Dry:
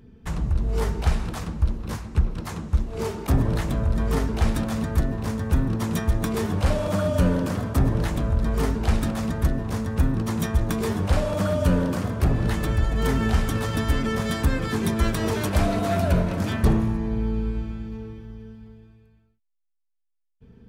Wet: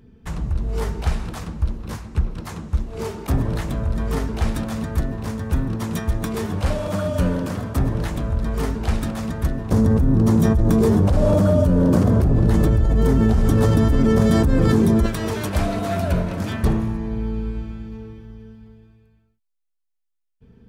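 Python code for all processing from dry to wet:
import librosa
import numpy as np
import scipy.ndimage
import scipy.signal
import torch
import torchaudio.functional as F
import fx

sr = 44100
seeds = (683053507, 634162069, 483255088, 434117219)

y = fx.chain(x, sr, fx.curve_eq(hz=(410.0, 2500.0, 5900.0), db=(0, -14, -9)),
    fx.env_flatten(amount_pct=100), at=(9.71, 15.06))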